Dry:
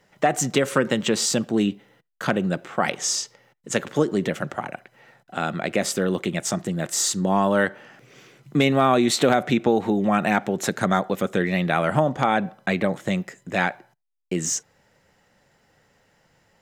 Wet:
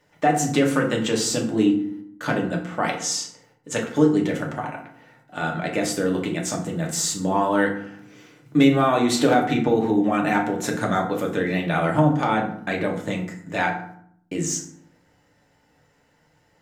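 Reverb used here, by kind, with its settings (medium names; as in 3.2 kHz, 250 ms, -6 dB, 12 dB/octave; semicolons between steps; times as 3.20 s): FDN reverb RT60 0.63 s, low-frequency decay 1.55×, high-frequency decay 0.6×, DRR -0.5 dB; trim -4 dB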